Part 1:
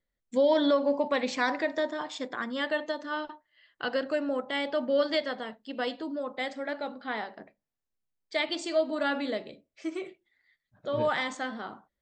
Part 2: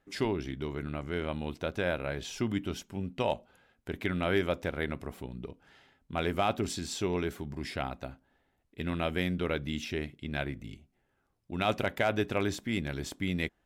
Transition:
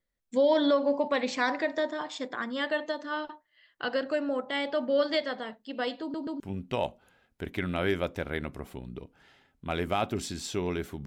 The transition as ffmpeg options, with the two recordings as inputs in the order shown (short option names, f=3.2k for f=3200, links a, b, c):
-filter_complex "[0:a]apad=whole_dur=11.06,atrim=end=11.06,asplit=3[a][b][c];[a]atrim=end=6.142[d];[b]atrim=start=6.008:end=6.142[e];[c]atrim=start=6.008:end=6.142[f];[1:a]atrim=start=2.868:end=7.53[g];[d][e]acrossfade=d=0.004:c1=hsin:c2=hsin[h];[h][f]acrossfade=d=0.004:c1=hsin:c2=hsin[i];[i][g]acrossfade=d=0.004:c1=hsin:c2=hsin"